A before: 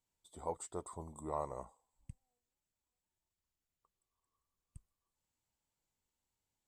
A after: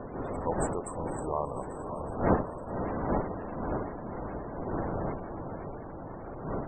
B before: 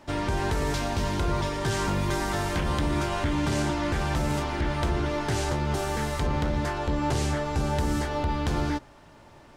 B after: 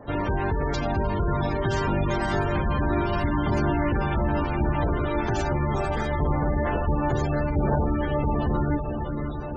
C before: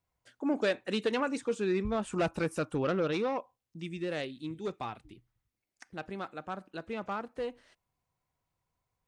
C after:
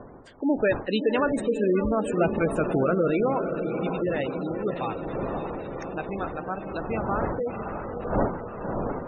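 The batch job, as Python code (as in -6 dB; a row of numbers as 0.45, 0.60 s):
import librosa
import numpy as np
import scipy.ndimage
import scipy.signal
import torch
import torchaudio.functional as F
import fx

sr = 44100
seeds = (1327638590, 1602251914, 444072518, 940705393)

y = fx.dmg_wind(x, sr, seeds[0], corner_hz=630.0, level_db=-42.0)
y = fx.high_shelf(y, sr, hz=4300.0, db=2.5)
y = fx.echo_diffused(y, sr, ms=566, feedback_pct=71, wet_db=-7)
y = fx.spec_gate(y, sr, threshold_db=-20, keep='strong')
y = y * 10.0 ** (-12 / 20.0) / np.max(np.abs(y))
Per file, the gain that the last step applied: +6.5, +1.5, +6.5 dB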